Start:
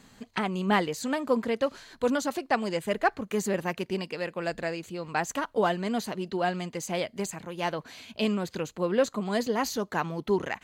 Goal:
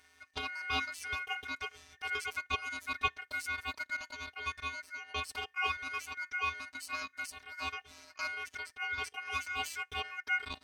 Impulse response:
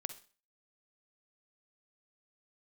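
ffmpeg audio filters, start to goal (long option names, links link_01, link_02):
-af "afftfilt=real='hypot(re,im)*cos(PI*b)':imag='0':win_size=512:overlap=0.75,aeval=exprs='val(0)*sin(2*PI*1800*n/s)':channel_layout=same,volume=-2dB"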